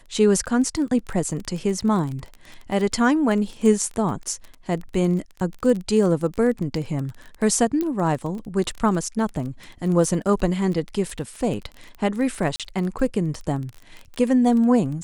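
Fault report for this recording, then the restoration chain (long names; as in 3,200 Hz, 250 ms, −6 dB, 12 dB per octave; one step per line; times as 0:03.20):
surface crackle 21 per second −28 dBFS
0:07.81: click −13 dBFS
0:12.56–0:12.60: drop-out 37 ms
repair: click removal
repair the gap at 0:12.56, 37 ms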